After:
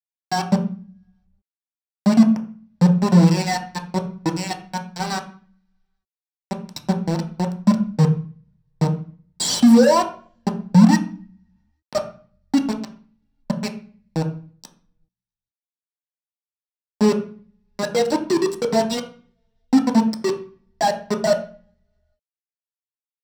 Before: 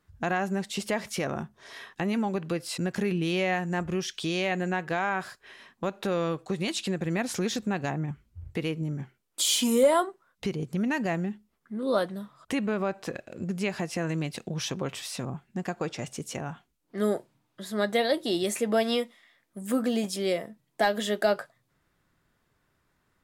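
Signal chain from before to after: expander on every frequency bin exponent 3; in parallel at -9 dB: hysteresis with a dead band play -46.5 dBFS; on the sum: bit crusher 5-bit; sine folder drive 6 dB, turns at -13.5 dBFS; reverberation RT60 0.40 s, pre-delay 3 ms, DRR 2 dB; trim -7.5 dB

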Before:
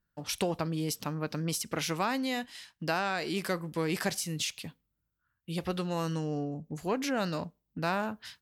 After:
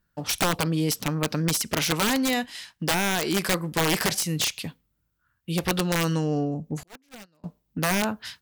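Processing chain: integer overflow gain 24 dB; 6.83–7.44 s: gate -26 dBFS, range -40 dB; trim +8 dB

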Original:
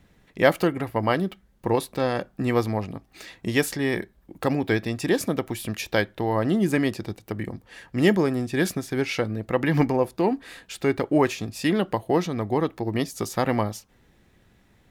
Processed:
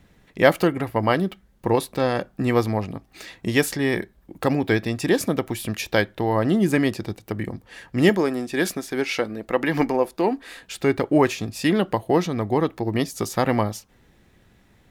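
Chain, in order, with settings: 8.09–10.63 s: peaking EQ 110 Hz -14.5 dB 1.2 oct; trim +2.5 dB

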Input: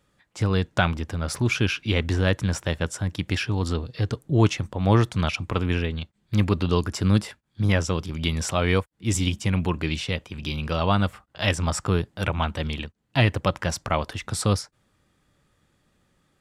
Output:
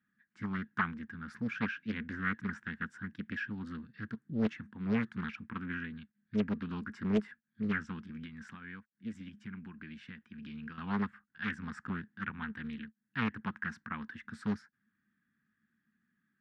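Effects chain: dynamic bell 770 Hz, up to +4 dB, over -38 dBFS, Q 0.94; 8.23–10.78 s: compression 6:1, threshold -27 dBFS, peak gain reduction 12 dB; two resonant band-passes 600 Hz, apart 2.9 oct; loudspeaker Doppler distortion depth 0.89 ms; trim -2 dB

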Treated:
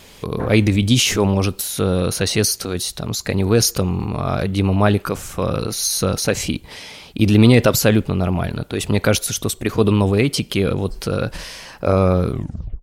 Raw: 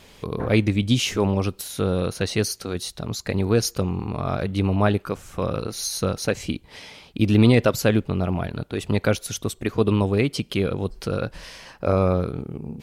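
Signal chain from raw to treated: tape stop on the ending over 0.52 s; treble shelf 6 kHz +6.5 dB; transient shaper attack 0 dB, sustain +6 dB; trim +4 dB

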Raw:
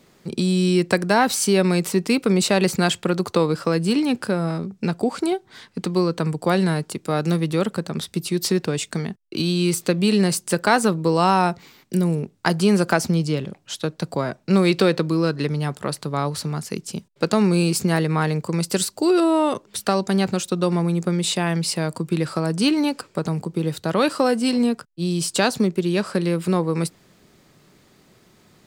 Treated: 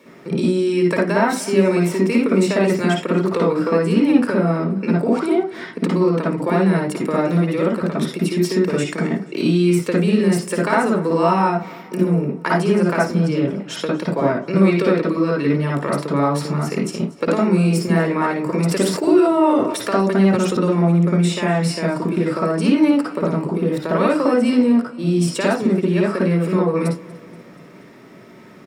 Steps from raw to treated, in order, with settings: dynamic bell 7.8 kHz, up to +4 dB, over -41 dBFS, Q 1.5; compression 3:1, threshold -28 dBFS, peak gain reduction 13 dB; feedback delay 239 ms, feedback 56%, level -21 dB; reverberation RT60 0.30 s, pre-delay 53 ms, DRR -2.5 dB; 18.57–20.57 s: decay stretcher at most 57 dB/s; trim -1 dB

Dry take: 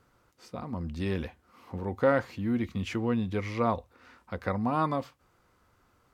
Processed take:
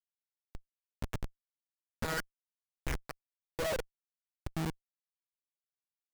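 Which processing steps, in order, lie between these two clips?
coarse spectral quantiser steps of 15 dB; waveshaping leveller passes 2; band-pass sweep 1.7 kHz -> 210 Hz, 2.83–4.49 s; monotone LPC vocoder at 8 kHz 160 Hz; Schmitt trigger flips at -34 dBFS; trim +4 dB

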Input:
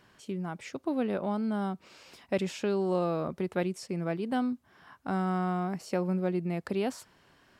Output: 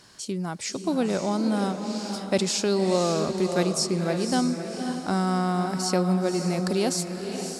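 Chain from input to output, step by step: high-order bell 6.5 kHz +13.5 dB; echo that smears into a reverb 547 ms, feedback 41%, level -6.5 dB; trim +5 dB

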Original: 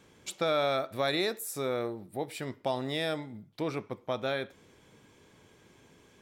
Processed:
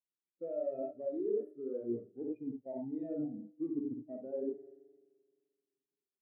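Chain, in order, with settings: square wave that keeps the level; high-pass 250 Hz 12 dB/octave; treble shelf 2.6 kHz -9.5 dB; band-stop 1 kHz, Q 13; on a send: multi-tap echo 60/93/361 ms -4/-5/-18.5 dB; on the sum: spectral noise reduction 10 dB; bass shelf 370 Hz +12 dB; spring tank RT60 4 s, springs 43 ms, chirp 65 ms, DRR 14 dB; reverse; compression 10:1, threshold -30 dBFS, peak gain reduction 15.5 dB; reverse; wow and flutter 21 cents; spectral contrast expander 2.5:1; trim -2.5 dB

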